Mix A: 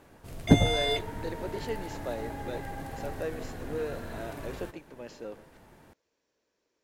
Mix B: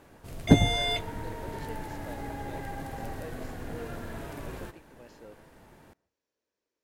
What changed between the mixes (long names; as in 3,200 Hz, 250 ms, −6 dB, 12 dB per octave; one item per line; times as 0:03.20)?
speech −9.0 dB
background: send +11.5 dB